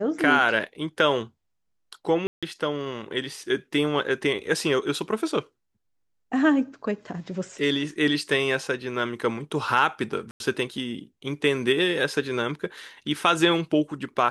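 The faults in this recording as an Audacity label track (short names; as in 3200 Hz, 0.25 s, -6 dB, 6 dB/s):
2.270000	2.430000	gap 0.156 s
10.310000	10.400000	gap 91 ms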